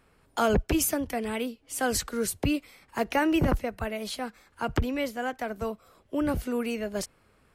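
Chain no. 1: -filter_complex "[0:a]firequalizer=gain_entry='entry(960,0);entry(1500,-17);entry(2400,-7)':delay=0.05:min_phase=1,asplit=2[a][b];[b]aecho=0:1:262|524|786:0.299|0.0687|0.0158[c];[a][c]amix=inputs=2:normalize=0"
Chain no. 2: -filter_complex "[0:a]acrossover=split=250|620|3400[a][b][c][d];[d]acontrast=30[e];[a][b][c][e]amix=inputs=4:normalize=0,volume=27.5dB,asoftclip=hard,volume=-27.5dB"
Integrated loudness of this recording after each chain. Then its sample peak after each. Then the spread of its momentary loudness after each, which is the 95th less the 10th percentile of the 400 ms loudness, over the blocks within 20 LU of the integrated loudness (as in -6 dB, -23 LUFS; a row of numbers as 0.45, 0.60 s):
-30.0, -32.5 LUFS; -14.0, -27.5 dBFS; 11, 8 LU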